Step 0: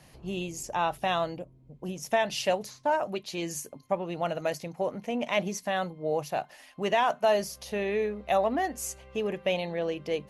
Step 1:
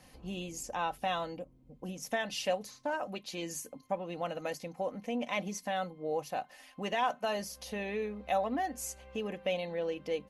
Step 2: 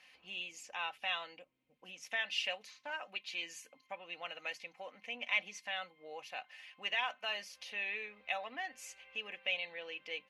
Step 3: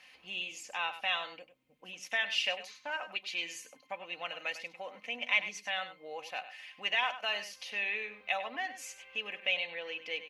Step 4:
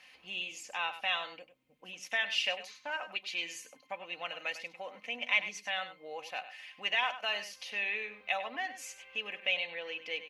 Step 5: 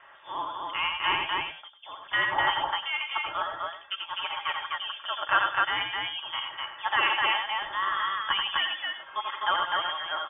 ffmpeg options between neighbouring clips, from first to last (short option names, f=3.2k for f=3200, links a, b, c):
-filter_complex "[0:a]aecho=1:1:3.9:0.5,asplit=2[a][b];[b]acompressor=threshold=-37dB:ratio=6,volume=-2.5dB[c];[a][c]amix=inputs=2:normalize=0,volume=-8dB"
-af "bandpass=f=2.5k:t=q:w=2.4:csg=0,volume=6.5dB"
-filter_complex "[0:a]asplit=2[a][b];[b]adelay=99.13,volume=-12dB,highshelf=f=4k:g=-2.23[c];[a][c]amix=inputs=2:normalize=0,volume=4.5dB"
-af anull
-af "lowpass=f=3.1k:t=q:w=0.5098,lowpass=f=3.1k:t=q:w=0.6013,lowpass=f=3.1k:t=q:w=0.9,lowpass=f=3.1k:t=q:w=2.563,afreqshift=-3700,aecho=1:1:84.55|253.6:0.562|0.794,volume=5.5dB"